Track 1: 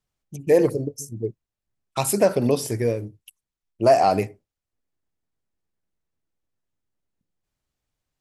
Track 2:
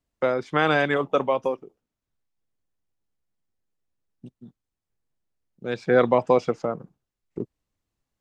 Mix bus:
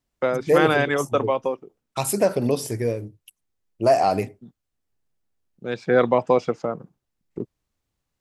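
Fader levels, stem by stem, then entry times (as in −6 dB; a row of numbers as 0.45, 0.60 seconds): −1.5, +0.5 decibels; 0.00, 0.00 seconds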